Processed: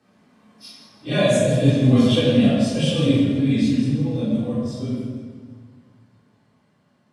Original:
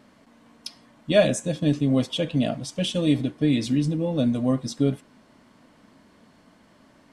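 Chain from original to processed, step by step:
random phases in long frames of 100 ms
source passing by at 0:02.14, 5 m/s, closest 3.9 metres
high-pass filter 120 Hz
frequency shifter −19 Hz
rectangular room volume 1,200 cubic metres, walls mixed, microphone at 3.7 metres
feedback echo with a swinging delay time 162 ms, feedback 52%, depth 96 cents, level −14 dB

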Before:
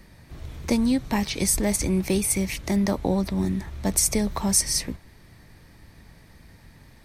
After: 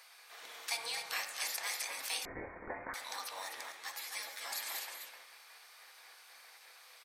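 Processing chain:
gate on every frequency bin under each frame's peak −20 dB weak
high-pass filter 920 Hz 12 dB per octave
in parallel at +1 dB: downward compressor, threshold −44 dBFS, peak gain reduction 14 dB
on the sum: single-tap delay 255 ms −6.5 dB
on a send at −4 dB: convolution reverb RT60 0.85 s, pre-delay 3 ms
0:02.25–0:02.94: on the sum: voice inversion scrambler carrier 2,700 Hz
0:03.72–0:04.52: string-ensemble chorus
level −4.5 dB

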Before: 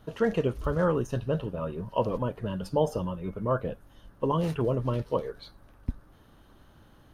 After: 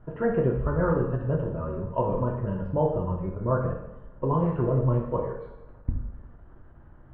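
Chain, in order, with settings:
low-pass filter 1,800 Hz 24 dB per octave
low-shelf EQ 97 Hz +10 dB
convolution reverb, pre-delay 3 ms, DRR −0.5 dB
every ending faded ahead of time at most 220 dB per second
level −2 dB

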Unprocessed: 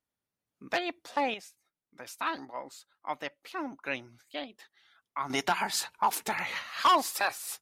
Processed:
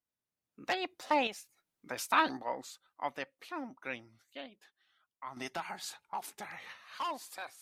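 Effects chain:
source passing by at 0:01.95, 19 m/s, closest 9.2 metres
level +6 dB

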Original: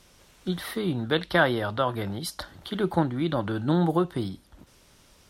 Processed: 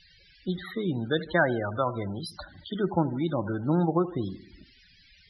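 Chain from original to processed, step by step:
noise in a band 1,500–5,500 Hz −52 dBFS
delay with a low-pass on its return 77 ms, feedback 56%, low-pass 2,600 Hz, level −16 dB
spectral peaks only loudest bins 32
level −1.5 dB

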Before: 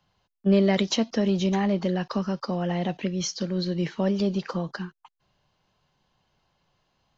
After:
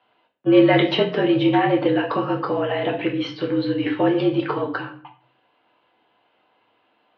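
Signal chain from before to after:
rectangular room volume 50 cubic metres, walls mixed, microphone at 0.59 metres
single-sideband voice off tune −52 Hz 300–3,400 Hz
level +7 dB

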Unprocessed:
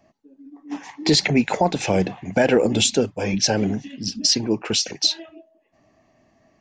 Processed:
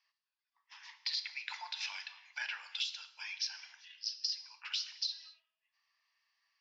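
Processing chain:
Chebyshev band-pass filter 940–5,100 Hz, order 4
first difference
downward compressor 10 to 1, threshold −34 dBFS, peak gain reduction 15 dB
reverb whose tail is shaped and stops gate 290 ms falling, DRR 9.5 dB

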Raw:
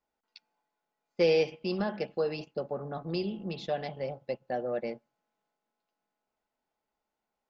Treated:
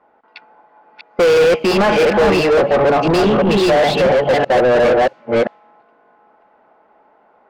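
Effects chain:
delay that plays each chunk backwards 342 ms, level −1 dB
low-pass that shuts in the quiet parts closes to 1,400 Hz, open at −27.5 dBFS
mid-hump overdrive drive 35 dB, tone 1,500 Hz, clips at −12.5 dBFS
level +8 dB

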